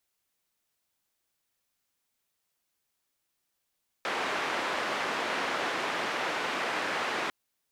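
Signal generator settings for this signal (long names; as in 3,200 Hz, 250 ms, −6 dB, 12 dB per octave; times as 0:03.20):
band-limited noise 300–1,900 Hz, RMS −31.5 dBFS 3.25 s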